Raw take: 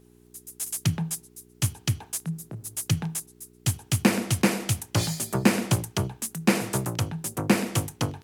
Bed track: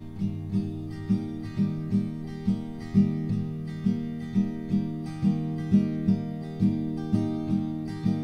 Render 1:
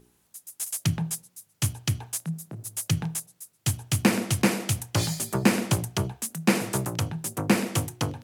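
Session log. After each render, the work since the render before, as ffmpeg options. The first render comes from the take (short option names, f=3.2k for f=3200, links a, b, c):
-af "bandreject=f=60:t=h:w=4,bandreject=f=120:t=h:w=4,bandreject=f=180:t=h:w=4,bandreject=f=240:t=h:w=4,bandreject=f=300:t=h:w=4,bandreject=f=360:t=h:w=4,bandreject=f=420:t=h:w=4,bandreject=f=480:t=h:w=4,bandreject=f=540:t=h:w=4,bandreject=f=600:t=h:w=4,bandreject=f=660:t=h:w=4,bandreject=f=720:t=h:w=4"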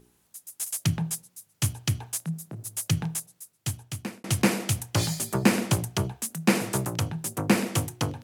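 -filter_complex "[0:a]asplit=2[a][b];[a]atrim=end=4.24,asetpts=PTS-STARTPTS,afade=t=out:st=3.31:d=0.93[c];[b]atrim=start=4.24,asetpts=PTS-STARTPTS,afade=t=in:d=0.004:c=hsin[d];[c][d]concat=n=2:v=0:a=1"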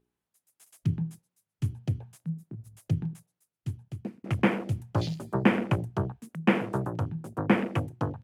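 -af "afwtdn=0.02,bass=f=250:g=-2,treble=f=4k:g=-10"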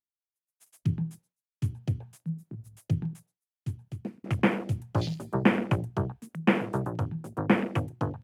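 -af "agate=range=-33dB:threshold=-54dB:ratio=3:detection=peak"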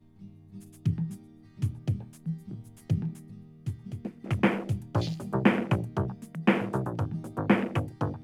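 -filter_complex "[1:a]volume=-18.5dB[a];[0:a][a]amix=inputs=2:normalize=0"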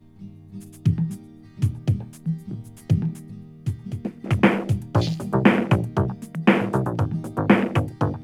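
-af "volume=7.5dB,alimiter=limit=-2dB:level=0:latency=1"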